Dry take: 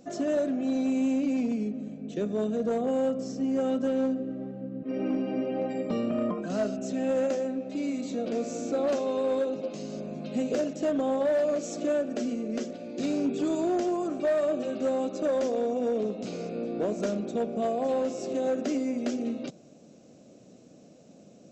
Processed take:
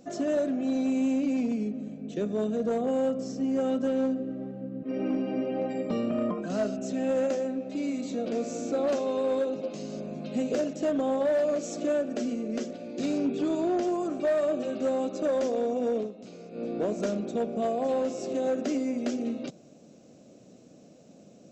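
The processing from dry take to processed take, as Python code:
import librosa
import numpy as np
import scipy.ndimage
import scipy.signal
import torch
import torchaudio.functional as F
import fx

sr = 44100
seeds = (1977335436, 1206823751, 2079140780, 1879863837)

y = fx.lowpass(x, sr, hz=5500.0, slope=12, at=(13.18, 13.83))
y = fx.edit(y, sr, fx.fade_down_up(start_s=15.97, length_s=0.68, db=-10.0, fade_s=0.14), tone=tone)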